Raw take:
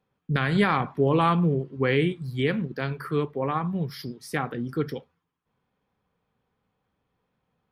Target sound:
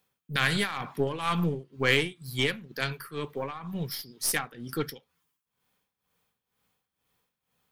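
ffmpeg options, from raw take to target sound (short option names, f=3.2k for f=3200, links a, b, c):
-af "crystalizer=i=9:c=0,aeval=exprs='0.891*(cos(1*acos(clip(val(0)/0.891,-1,1)))-cos(1*PI/2))+0.0501*(cos(8*acos(clip(val(0)/0.891,-1,1)))-cos(8*PI/2))':c=same,tremolo=f=2.1:d=0.79,volume=-4.5dB"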